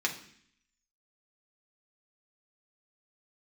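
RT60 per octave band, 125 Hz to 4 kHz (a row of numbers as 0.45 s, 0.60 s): 0.80 s, 0.80 s, 0.60 s, 0.60 s, 0.75 s, 0.75 s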